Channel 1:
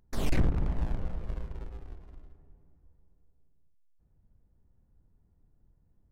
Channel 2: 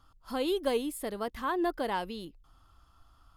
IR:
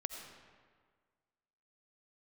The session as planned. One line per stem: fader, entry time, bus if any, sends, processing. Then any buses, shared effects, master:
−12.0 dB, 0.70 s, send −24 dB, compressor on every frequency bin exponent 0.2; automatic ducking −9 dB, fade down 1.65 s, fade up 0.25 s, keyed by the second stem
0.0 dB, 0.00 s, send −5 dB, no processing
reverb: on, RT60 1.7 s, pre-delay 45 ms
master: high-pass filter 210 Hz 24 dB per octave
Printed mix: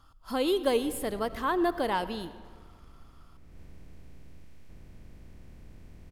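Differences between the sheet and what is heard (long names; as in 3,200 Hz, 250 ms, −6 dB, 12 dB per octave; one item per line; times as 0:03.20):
stem 1 −12.0 dB → −21.0 dB
master: missing high-pass filter 210 Hz 24 dB per octave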